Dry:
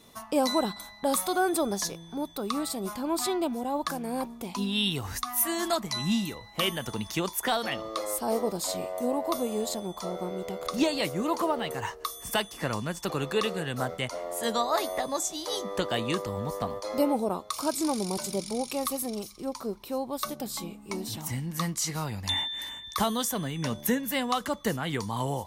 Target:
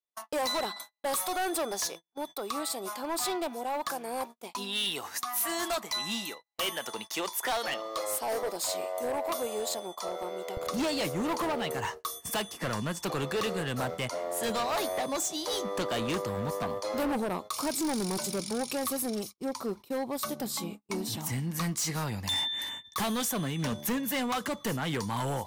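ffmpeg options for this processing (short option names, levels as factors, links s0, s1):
-af "asetnsamples=n=441:p=0,asendcmd='10.57 highpass f 91',highpass=470,agate=range=0.00562:threshold=0.00891:ratio=16:detection=peak,volume=26.6,asoftclip=hard,volume=0.0376,volume=1.19"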